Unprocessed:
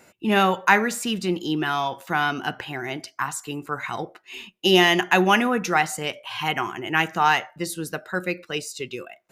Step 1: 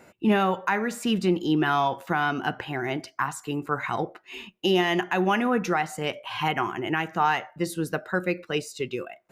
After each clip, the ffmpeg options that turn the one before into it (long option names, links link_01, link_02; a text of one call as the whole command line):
ffmpeg -i in.wav -af "highshelf=frequency=2800:gain=-10.5,alimiter=limit=-15.5dB:level=0:latency=1:release=395,highshelf=frequency=12000:gain=3.5,volume=3dB" out.wav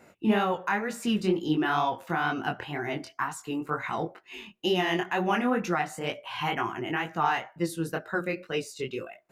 ffmpeg -i in.wav -af "flanger=delay=17.5:depth=6.9:speed=2.1" out.wav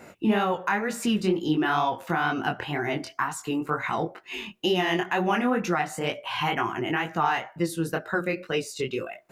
ffmpeg -i in.wav -af "acompressor=threshold=-41dB:ratio=1.5,volume=8.5dB" out.wav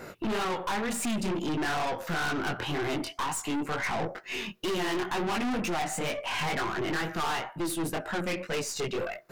ffmpeg -i in.wav -af "afftfilt=real='re*pow(10,6/40*sin(2*PI*(0.59*log(max(b,1)*sr/1024/100)/log(2)-(-0.43)*(pts-256)/sr)))':imag='im*pow(10,6/40*sin(2*PI*(0.59*log(max(b,1)*sr/1024/100)/log(2)-(-0.43)*(pts-256)/sr)))':win_size=1024:overlap=0.75,aeval=exprs='(tanh(44.7*val(0)+0.35)-tanh(0.35))/44.7':channel_layout=same,volume=5dB" out.wav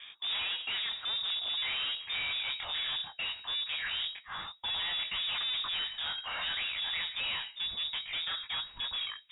ffmpeg -i in.wav -af "acrusher=bits=2:mode=log:mix=0:aa=0.000001,lowpass=frequency=3200:width_type=q:width=0.5098,lowpass=frequency=3200:width_type=q:width=0.6013,lowpass=frequency=3200:width_type=q:width=0.9,lowpass=frequency=3200:width_type=q:width=2.563,afreqshift=-3800,asubboost=boost=3:cutoff=170,volume=-5.5dB" out.wav